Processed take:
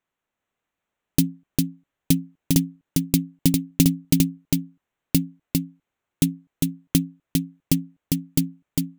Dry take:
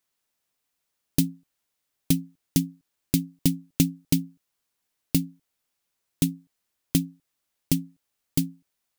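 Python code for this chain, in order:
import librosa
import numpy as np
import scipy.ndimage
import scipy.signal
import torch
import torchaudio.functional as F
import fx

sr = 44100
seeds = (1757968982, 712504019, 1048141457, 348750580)

y = fx.wiener(x, sr, points=9)
y = y + 10.0 ** (-3.0 / 20.0) * np.pad(y, (int(402 * sr / 1000.0), 0))[:len(y)]
y = y * librosa.db_to_amplitude(3.0)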